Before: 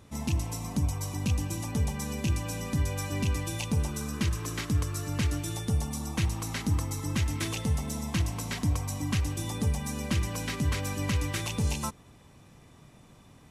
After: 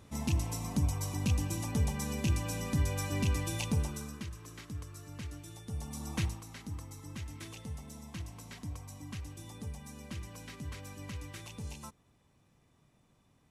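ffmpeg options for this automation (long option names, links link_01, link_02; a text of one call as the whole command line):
ffmpeg -i in.wav -af "volume=8.5dB,afade=type=out:start_time=3.67:duration=0.59:silence=0.237137,afade=type=in:start_time=5.65:duration=0.55:silence=0.298538,afade=type=out:start_time=6.2:duration=0.22:silence=0.316228" out.wav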